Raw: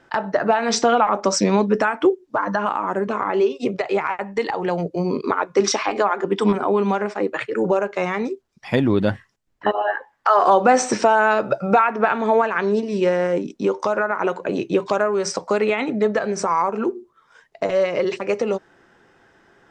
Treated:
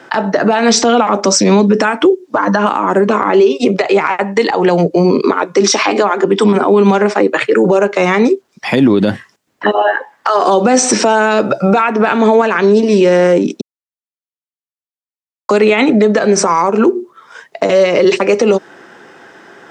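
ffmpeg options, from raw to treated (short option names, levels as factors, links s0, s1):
-filter_complex "[0:a]asplit=3[s0][s1][s2];[s0]atrim=end=13.61,asetpts=PTS-STARTPTS,afade=t=out:st=13.606:d=0.004:c=hsin[s3];[s1]atrim=start=13.61:end=15.49,asetpts=PTS-STARTPTS,volume=0[s4];[s2]atrim=start=15.49,asetpts=PTS-STARTPTS,afade=t=in:d=0.004:c=hsin[s5];[s3][s4][s5]concat=n=3:v=0:a=1,highpass=200,acrossover=split=380|3000[s6][s7][s8];[s7]acompressor=threshold=0.0398:ratio=4[s9];[s6][s9][s8]amix=inputs=3:normalize=0,alimiter=level_in=7.5:limit=0.891:release=50:level=0:latency=1,volume=0.891"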